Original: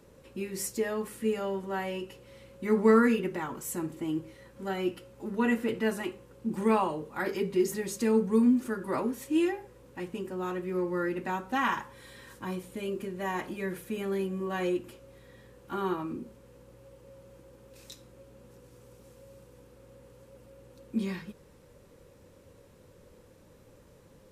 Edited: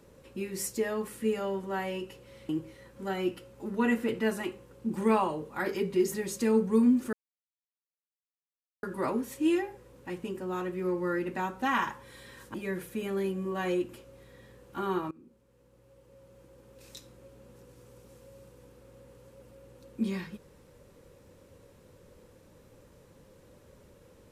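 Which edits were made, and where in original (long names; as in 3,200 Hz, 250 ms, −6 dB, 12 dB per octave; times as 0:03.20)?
0:02.49–0:04.09: remove
0:08.73: splice in silence 1.70 s
0:12.44–0:13.49: remove
0:16.06–0:17.91: fade in, from −21 dB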